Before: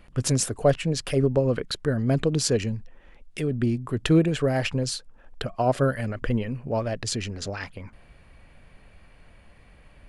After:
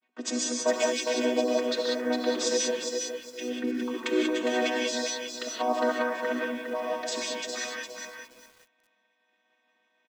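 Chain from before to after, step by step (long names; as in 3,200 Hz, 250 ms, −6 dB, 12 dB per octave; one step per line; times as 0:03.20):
channel vocoder with a chord as carrier major triad, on B3
downward expander −52 dBFS
tilt shelving filter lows −10 dB, about 750 Hz
notch filter 2,900 Hz, Q 14
comb filter 4.4 ms, depth 58%
hum removal 140.6 Hz, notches 9
on a send: single-tap delay 407 ms −7 dB
on the sum: reverb whose tail is shaped and stops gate 210 ms rising, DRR −1.5 dB
feedback echo at a low word length 409 ms, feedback 35%, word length 7 bits, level −12.5 dB
level −2.5 dB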